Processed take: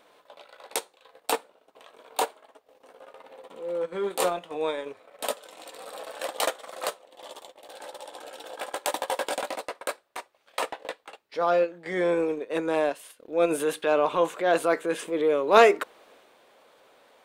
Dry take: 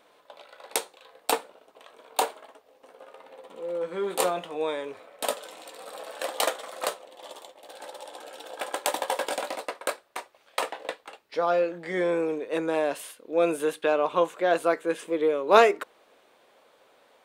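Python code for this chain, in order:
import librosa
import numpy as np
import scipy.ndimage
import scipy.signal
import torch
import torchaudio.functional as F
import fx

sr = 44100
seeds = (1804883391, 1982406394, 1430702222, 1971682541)

y = fx.transient(x, sr, attack_db=-5, sustain_db=fx.steps((0.0, -9.0), (13.5, 3.0)))
y = y * librosa.db_to_amplitude(2.0)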